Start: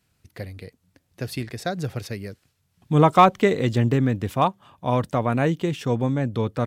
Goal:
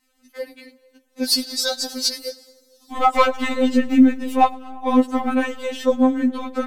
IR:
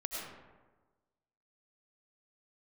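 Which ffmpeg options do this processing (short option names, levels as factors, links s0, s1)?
-filter_complex "[0:a]acontrast=88,asettb=1/sr,asplit=3[s0][s1][s2];[s0]atrim=end=1.244[s3];[s1]atrim=start=1.24:end=2.92,asetpts=PTS-STARTPTS,afade=t=in:d=0.004:c=qsin,afade=t=out:st=1.676:d=0.004:c=qsin,highshelf=f=3300:t=q:w=3:g=11[s4];[s2]atrim=start=2.916[s5];[s3][s4]acrossfade=d=0.004:c1=hsin:c2=qsin[s6];[s6][s5]acrossfade=d=0.004:c1=qsin:c2=hsin,aphaser=in_gain=1:out_gain=1:delay=4.6:decay=0.57:speed=2:type=triangular,asplit=2[s7][s8];[1:a]atrim=start_sample=2205,adelay=106[s9];[s8][s9]afir=irnorm=-1:irlink=0,volume=0.0891[s10];[s7][s10]amix=inputs=2:normalize=0,afftfilt=real='re*3.46*eq(mod(b,12),0)':imag='im*3.46*eq(mod(b,12),0)':win_size=2048:overlap=0.75,volume=0.708"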